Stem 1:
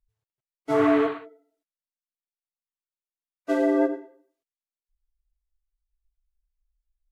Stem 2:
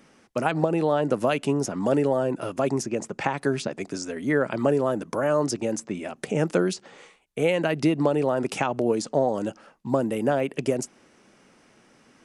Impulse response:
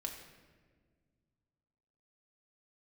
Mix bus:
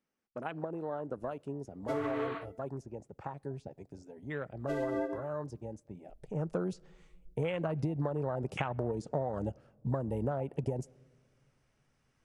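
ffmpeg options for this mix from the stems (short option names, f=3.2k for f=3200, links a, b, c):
-filter_complex "[0:a]acompressor=threshold=-21dB:ratio=6,adelay=1200,volume=-0.5dB[a];[1:a]afwtdn=0.0398,volume=-2.5dB,afade=t=in:st=6.25:d=0.54:silence=0.251189,asplit=3[b][c][d];[c]volume=-23dB[e];[d]apad=whole_len=366533[f];[a][f]sidechaincompress=threshold=-37dB:ratio=8:attack=16:release=193[g];[2:a]atrim=start_sample=2205[h];[e][h]afir=irnorm=-1:irlink=0[i];[g][b][i]amix=inputs=3:normalize=0,asubboost=boost=12:cutoff=75,acompressor=threshold=-29dB:ratio=10"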